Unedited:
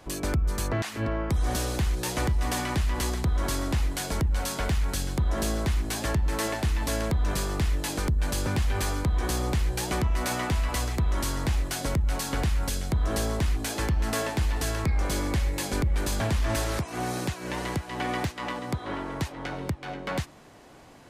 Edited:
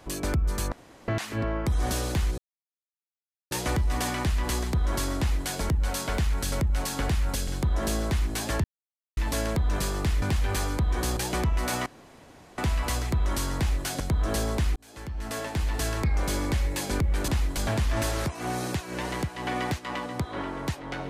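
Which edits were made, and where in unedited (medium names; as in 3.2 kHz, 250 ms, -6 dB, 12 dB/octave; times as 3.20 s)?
0.72 s: insert room tone 0.36 s
2.02 s: insert silence 1.13 s
3.69–3.98 s: copy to 16.10 s
6.19–6.72 s: mute
7.77–8.48 s: delete
9.43–9.75 s: delete
10.44 s: insert room tone 0.72 s
11.86–12.82 s: move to 5.03 s
13.58–14.63 s: fade in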